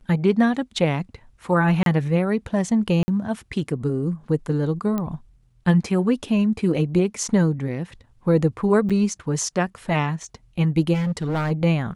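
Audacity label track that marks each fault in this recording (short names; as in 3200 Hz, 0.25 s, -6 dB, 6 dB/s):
1.830000	1.860000	gap 32 ms
3.030000	3.080000	gap 50 ms
4.980000	4.980000	pop -14 dBFS
8.890000	8.900000	gap 6.7 ms
10.930000	11.520000	clipped -20 dBFS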